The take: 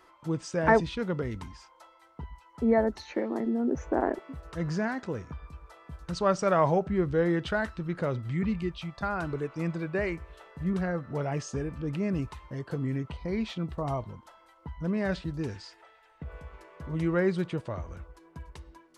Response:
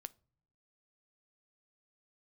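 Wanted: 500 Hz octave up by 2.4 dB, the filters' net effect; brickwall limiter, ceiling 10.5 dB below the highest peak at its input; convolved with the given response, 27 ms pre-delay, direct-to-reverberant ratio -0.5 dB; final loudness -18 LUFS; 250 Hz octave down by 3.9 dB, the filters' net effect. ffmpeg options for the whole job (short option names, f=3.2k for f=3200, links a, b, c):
-filter_complex "[0:a]equalizer=f=250:t=o:g=-7.5,equalizer=f=500:t=o:g=5,alimiter=limit=-18.5dB:level=0:latency=1,asplit=2[a][b];[1:a]atrim=start_sample=2205,adelay=27[c];[b][c]afir=irnorm=-1:irlink=0,volume=5.5dB[d];[a][d]amix=inputs=2:normalize=0,volume=11dB"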